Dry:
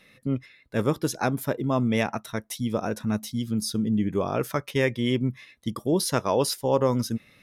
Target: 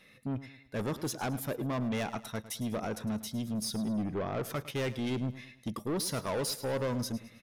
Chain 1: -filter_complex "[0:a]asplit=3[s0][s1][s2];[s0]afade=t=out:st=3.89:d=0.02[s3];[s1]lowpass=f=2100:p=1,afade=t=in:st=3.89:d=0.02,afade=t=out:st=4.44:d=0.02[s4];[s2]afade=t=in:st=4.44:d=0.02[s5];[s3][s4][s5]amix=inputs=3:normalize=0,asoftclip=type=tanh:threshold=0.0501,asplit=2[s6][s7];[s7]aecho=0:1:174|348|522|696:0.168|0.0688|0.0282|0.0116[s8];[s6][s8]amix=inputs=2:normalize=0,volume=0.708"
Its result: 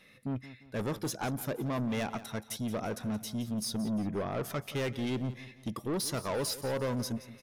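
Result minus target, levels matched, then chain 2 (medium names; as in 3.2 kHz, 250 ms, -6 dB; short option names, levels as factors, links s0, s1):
echo 68 ms late
-filter_complex "[0:a]asplit=3[s0][s1][s2];[s0]afade=t=out:st=3.89:d=0.02[s3];[s1]lowpass=f=2100:p=1,afade=t=in:st=3.89:d=0.02,afade=t=out:st=4.44:d=0.02[s4];[s2]afade=t=in:st=4.44:d=0.02[s5];[s3][s4][s5]amix=inputs=3:normalize=0,asoftclip=type=tanh:threshold=0.0501,asplit=2[s6][s7];[s7]aecho=0:1:106|212|318|424:0.168|0.0688|0.0282|0.0116[s8];[s6][s8]amix=inputs=2:normalize=0,volume=0.708"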